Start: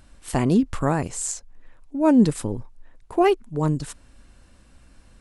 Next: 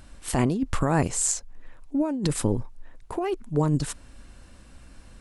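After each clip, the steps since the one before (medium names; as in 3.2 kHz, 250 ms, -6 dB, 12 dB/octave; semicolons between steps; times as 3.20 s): compressor with a negative ratio -23 dBFS, ratio -1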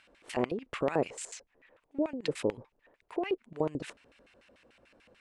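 LFO band-pass square 6.8 Hz 490–2400 Hz; trim +2.5 dB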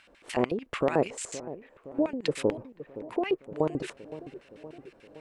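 feedback echo behind a low-pass 517 ms, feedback 63%, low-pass 840 Hz, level -14 dB; trim +4 dB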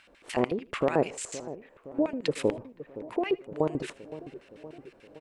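feedback delay 79 ms, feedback 35%, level -22 dB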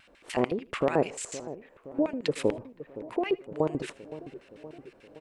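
vibrato 0.39 Hz 8.4 cents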